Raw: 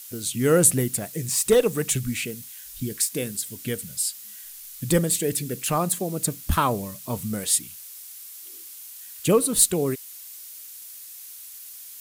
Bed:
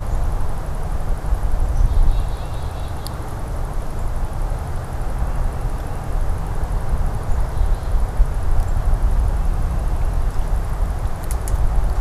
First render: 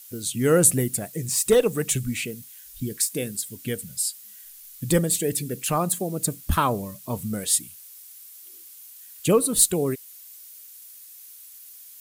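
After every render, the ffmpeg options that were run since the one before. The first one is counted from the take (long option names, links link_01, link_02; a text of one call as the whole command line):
ffmpeg -i in.wav -af "afftdn=noise_reduction=6:noise_floor=-42" out.wav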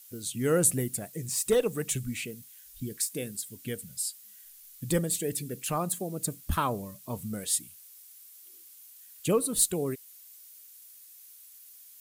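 ffmpeg -i in.wav -af "volume=-6.5dB" out.wav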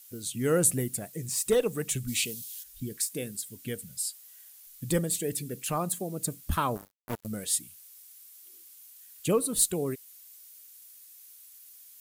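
ffmpeg -i in.wav -filter_complex "[0:a]asplit=3[link_01][link_02][link_03];[link_01]afade=type=out:start_time=2.07:duration=0.02[link_04];[link_02]highshelf=frequency=2600:width_type=q:width=1.5:gain=10,afade=type=in:start_time=2.07:duration=0.02,afade=type=out:start_time=2.62:duration=0.02[link_05];[link_03]afade=type=in:start_time=2.62:duration=0.02[link_06];[link_04][link_05][link_06]amix=inputs=3:normalize=0,asettb=1/sr,asplit=3[link_07][link_08][link_09];[link_07]atrim=end=3.994[link_10];[link_08]atrim=start=3.99:end=4.67,asetpts=PTS-STARTPTS,afade=type=in:duration=0.004:curve=qsin,afade=type=out:start_time=0.676:duration=0.004:curve=qsin,highpass=frequency=570:width_type=q:width=2.1[link_11];[link_09]atrim=start=4.666[link_12];[link_10][link_11]acrossfade=duration=0.004:curve1=hsin:curve2=qsin[link_13];[link_13][link_12]acrossfade=duration=0.004:curve1=qsin:curve2=hsin,asplit=3[link_14][link_15][link_16];[link_14]afade=type=out:start_time=6.75:duration=0.02[link_17];[link_15]acrusher=bits=4:mix=0:aa=0.5,afade=type=in:start_time=6.75:duration=0.02,afade=type=out:start_time=7.26:duration=0.02[link_18];[link_16]afade=type=in:start_time=7.26:duration=0.02[link_19];[link_17][link_18][link_19]amix=inputs=3:normalize=0" out.wav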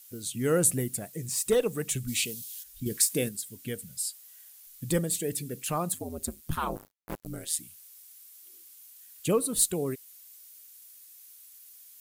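ffmpeg -i in.wav -filter_complex "[0:a]asettb=1/sr,asplit=3[link_01][link_02][link_03];[link_01]atrim=end=5.944[link_04];[link_02]atrim=start=5.94:end=7.59,asetpts=PTS-STARTPTS,afade=type=in:duration=0.004:curve=qsin,afade=type=out:start_time=1.646:duration=0.004:curve=qsin,aeval=exprs='val(0)*sin(2*PI*80*n/s)':channel_layout=same[link_05];[link_03]atrim=start=7.586[link_06];[link_04][link_05]acrossfade=duration=0.004:curve1=hsin:curve2=qsin[link_07];[link_07][link_06]acrossfade=duration=0.004:curve1=qsin:curve2=hsin,asplit=3[link_08][link_09][link_10];[link_08]atrim=end=2.862[link_11];[link_09]atrim=start=2.858:end=3.292,asetpts=PTS-STARTPTS,volume=6.5dB[link_12];[link_10]atrim=start=3.288[link_13];[link_11][link_12]acrossfade=duration=0.004:curve1=hsin:curve2=hsin[link_14];[link_14][link_13]acrossfade=duration=0.004:curve1=hsin:curve2=hsin" out.wav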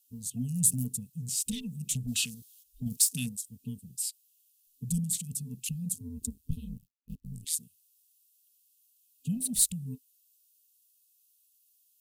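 ffmpeg -i in.wav -af "afftfilt=real='re*(1-between(b*sr/4096,260,2500))':imag='im*(1-between(b*sr/4096,260,2500))':win_size=4096:overlap=0.75,afwtdn=0.00708" out.wav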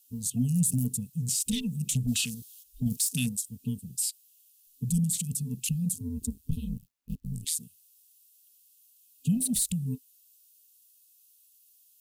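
ffmpeg -i in.wav -af "acontrast=67,alimiter=limit=-17.5dB:level=0:latency=1:release=49" out.wav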